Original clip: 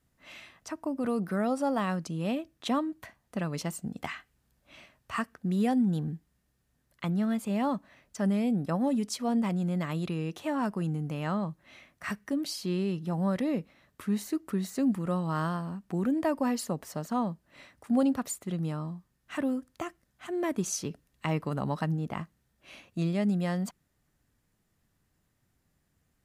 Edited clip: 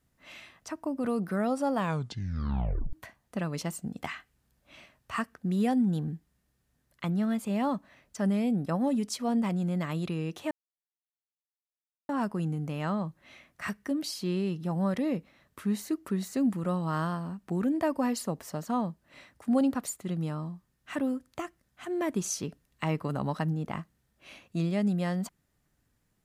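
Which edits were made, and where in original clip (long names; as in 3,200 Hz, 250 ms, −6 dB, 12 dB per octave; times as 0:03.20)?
0:01.76: tape stop 1.17 s
0:10.51: splice in silence 1.58 s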